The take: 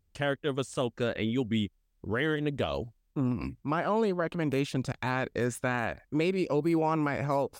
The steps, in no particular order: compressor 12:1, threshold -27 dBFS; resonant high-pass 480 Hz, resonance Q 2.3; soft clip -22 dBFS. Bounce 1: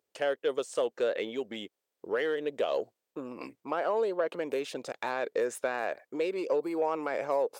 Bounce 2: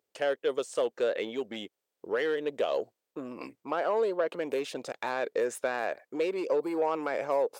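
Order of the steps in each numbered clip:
compressor > soft clip > resonant high-pass; soft clip > compressor > resonant high-pass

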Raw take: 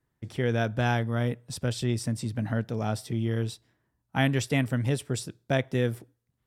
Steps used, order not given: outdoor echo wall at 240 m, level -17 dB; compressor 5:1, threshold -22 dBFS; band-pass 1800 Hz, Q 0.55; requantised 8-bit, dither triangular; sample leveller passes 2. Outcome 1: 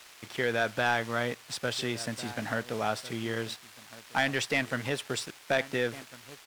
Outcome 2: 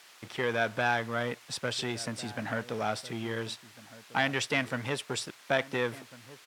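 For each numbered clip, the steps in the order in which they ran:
requantised > outdoor echo > compressor > band-pass > sample leveller; compressor > sample leveller > outdoor echo > requantised > band-pass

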